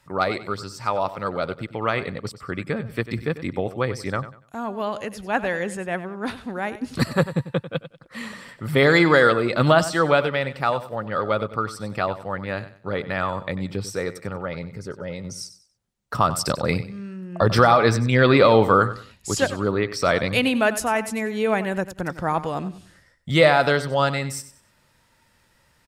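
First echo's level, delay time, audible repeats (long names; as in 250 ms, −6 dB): −14.0 dB, 95 ms, 2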